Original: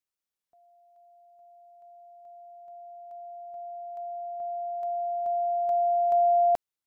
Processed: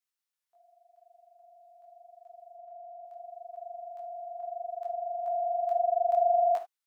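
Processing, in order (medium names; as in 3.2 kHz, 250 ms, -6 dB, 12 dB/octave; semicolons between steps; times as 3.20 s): high-pass 870 Hz 12 dB/octave; 2.56–3.05 s: tilt EQ -3.5 dB/octave; 3.87–5.24 s: doubling 25 ms -13 dB; gated-style reverb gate 90 ms flat, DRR 8 dB; detune thickener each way 59 cents; trim +4 dB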